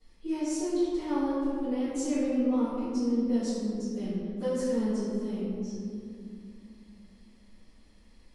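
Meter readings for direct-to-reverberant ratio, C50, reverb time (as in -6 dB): -16.5 dB, -3.5 dB, 2.3 s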